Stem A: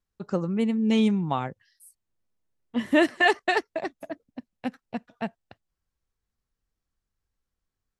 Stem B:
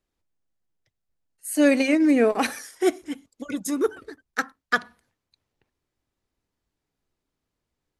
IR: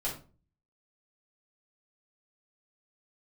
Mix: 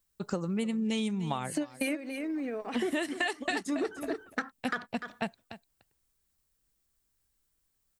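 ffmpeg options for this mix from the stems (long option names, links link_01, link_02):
-filter_complex "[0:a]highshelf=frequency=2600:gain=10.5,volume=0dB,asplit=3[link_01][link_02][link_03];[link_02]volume=-19dB[link_04];[1:a]lowpass=4400,alimiter=limit=-16.5dB:level=0:latency=1:release=54,volume=3dB,asplit=2[link_05][link_06];[link_06]volume=-14.5dB[link_07];[link_03]apad=whole_len=352759[link_08];[link_05][link_08]sidechaingate=range=-33dB:threshold=-47dB:ratio=16:detection=peak[link_09];[link_04][link_07]amix=inputs=2:normalize=0,aecho=0:1:296:1[link_10];[link_01][link_09][link_10]amix=inputs=3:normalize=0,aexciter=amount=1.2:drive=8.2:freq=7900,acompressor=threshold=-28dB:ratio=10"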